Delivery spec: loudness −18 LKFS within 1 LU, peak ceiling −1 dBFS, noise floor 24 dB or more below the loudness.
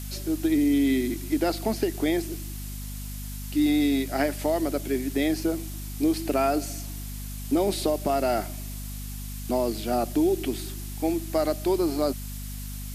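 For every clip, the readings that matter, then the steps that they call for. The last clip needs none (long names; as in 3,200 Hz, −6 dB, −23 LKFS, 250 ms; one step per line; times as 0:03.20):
mains hum 50 Hz; hum harmonics up to 250 Hz; level of the hum −33 dBFS; background noise floor −35 dBFS; target noise floor −51 dBFS; integrated loudness −27.0 LKFS; sample peak −11.5 dBFS; target loudness −18.0 LKFS
→ mains-hum notches 50/100/150/200/250 Hz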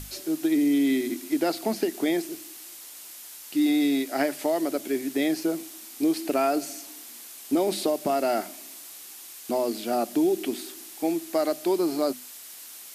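mains hum none found; background noise floor −44 dBFS; target noise floor −51 dBFS
→ broadband denoise 7 dB, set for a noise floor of −44 dBFS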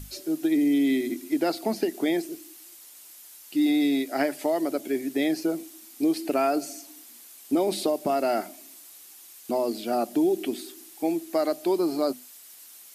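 background noise floor −49 dBFS; target noise floor −51 dBFS
→ broadband denoise 6 dB, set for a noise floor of −49 dBFS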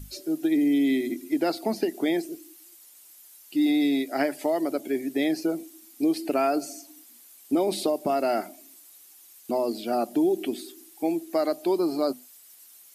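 background noise floor −52 dBFS; integrated loudness −26.5 LKFS; sample peak −11.5 dBFS; target loudness −18.0 LKFS
→ level +8.5 dB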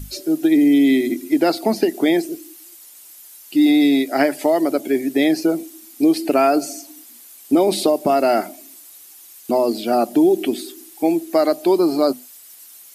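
integrated loudness −18.0 LKFS; sample peak −3.0 dBFS; background noise floor −44 dBFS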